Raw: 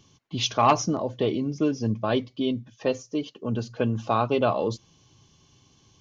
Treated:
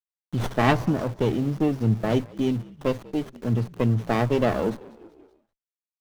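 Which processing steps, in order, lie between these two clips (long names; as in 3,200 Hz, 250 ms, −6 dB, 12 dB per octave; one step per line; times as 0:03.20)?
centre clipping without the shift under −39 dBFS
echo with shifted repeats 191 ms, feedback 55%, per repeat −60 Hz, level −22 dB
high-pass filter sweep 120 Hz → 800 Hz, 0:04.34–0:05.92
windowed peak hold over 17 samples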